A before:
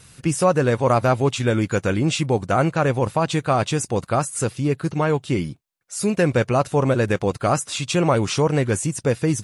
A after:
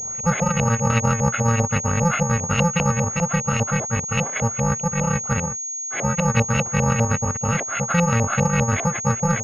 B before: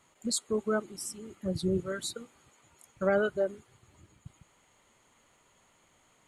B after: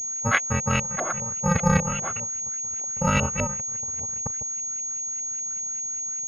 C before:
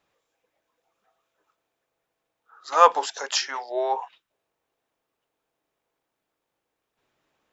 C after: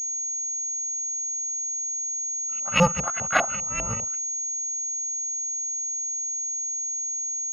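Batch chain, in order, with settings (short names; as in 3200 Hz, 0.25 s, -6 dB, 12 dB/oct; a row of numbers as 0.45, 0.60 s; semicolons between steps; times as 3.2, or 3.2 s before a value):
FFT order left unsorted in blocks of 128 samples; LFO low-pass saw up 5 Hz 630–2600 Hz; pulse-width modulation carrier 6600 Hz; normalise peaks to -6 dBFS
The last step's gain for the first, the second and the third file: +5.0, +15.0, +9.0 dB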